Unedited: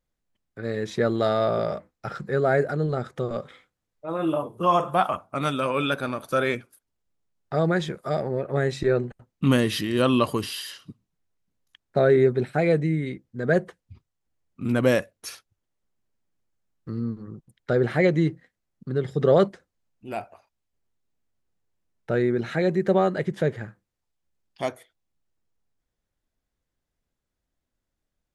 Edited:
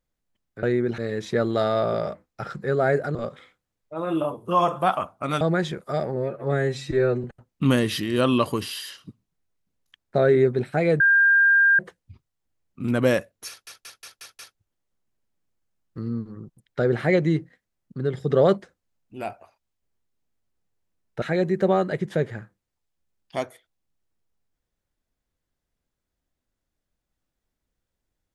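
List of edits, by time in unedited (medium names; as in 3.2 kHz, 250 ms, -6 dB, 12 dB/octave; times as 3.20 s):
2.80–3.27 s: delete
5.53–7.58 s: delete
8.33–9.05 s: stretch 1.5×
12.81–13.60 s: bleep 1.6 kHz -13.5 dBFS
15.30 s: stutter 0.18 s, 6 plays
22.13–22.48 s: move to 0.63 s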